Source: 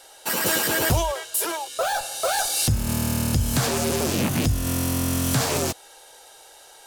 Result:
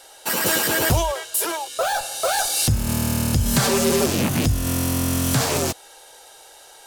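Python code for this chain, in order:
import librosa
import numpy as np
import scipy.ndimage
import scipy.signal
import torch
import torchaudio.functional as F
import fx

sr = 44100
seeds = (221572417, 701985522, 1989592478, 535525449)

y = fx.comb(x, sr, ms=5.1, depth=0.82, at=(3.45, 4.06))
y = y * 10.0 ** (2.0 / 20.0)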